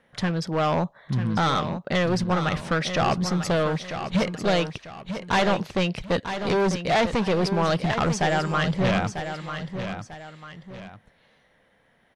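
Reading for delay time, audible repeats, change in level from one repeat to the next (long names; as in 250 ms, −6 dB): 945 ms, 2, −9.0 dB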